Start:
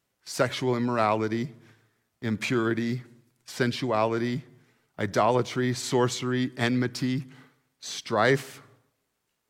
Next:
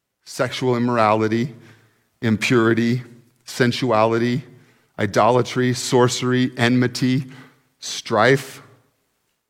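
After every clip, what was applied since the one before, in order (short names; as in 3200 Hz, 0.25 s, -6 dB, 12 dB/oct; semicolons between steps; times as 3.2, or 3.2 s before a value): AGC gain up to 10 dB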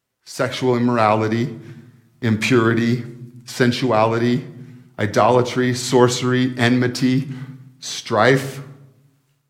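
reverb RT60 0.85 s, pre-delay 8 ms, DRR 9.5 dB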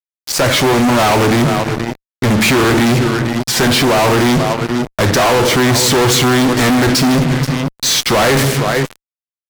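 echo 0.478 s -17 dB; fuzz box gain 36 dB, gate -35 dBFS; gain +3 dB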